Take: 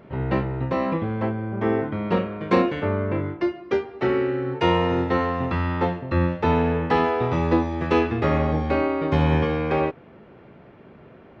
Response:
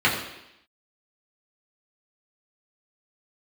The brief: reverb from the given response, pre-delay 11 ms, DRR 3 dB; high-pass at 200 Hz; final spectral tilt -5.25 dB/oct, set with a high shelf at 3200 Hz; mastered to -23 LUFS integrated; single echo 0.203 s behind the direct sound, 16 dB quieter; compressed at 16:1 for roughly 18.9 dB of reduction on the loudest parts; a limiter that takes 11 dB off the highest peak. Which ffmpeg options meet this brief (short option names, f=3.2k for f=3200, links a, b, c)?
-filter_complex "[0:a]highpass=200,highshelf=f=3.2k:g=5,acompressor=threshold=-34dB:ratio=16,alimiter=level_in=9.5dB:limit=-24dB:level=0:latency=1,volume=-9.5dB,aecho=1:1:203:0.158,asplit=2[a][b];[1:a]atrim=start_sample=2205,adelay=11[c];[b][c]afir=irnorm=-1:irlink=0,volume=-21.5dB[d];[a][d]amix=inputs=2:normalize=0,volume=17dB"